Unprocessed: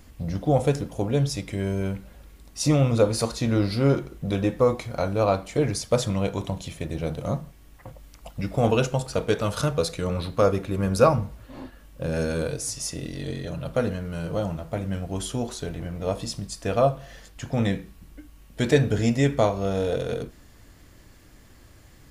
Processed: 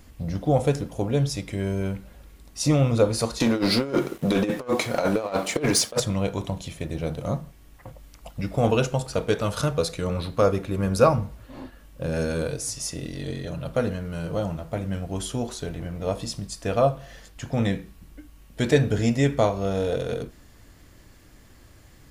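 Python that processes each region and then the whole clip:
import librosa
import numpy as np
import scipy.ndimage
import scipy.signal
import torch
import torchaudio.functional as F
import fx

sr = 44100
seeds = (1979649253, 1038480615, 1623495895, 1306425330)

y = fx.chain(x, sr, fx.highpass(hz=230.0, slope=12),
    fx.over_compress(threshold_db=-28.0, ratio=-0.5),
    fx.leveller(passes=2), at=(3.4, 6.0))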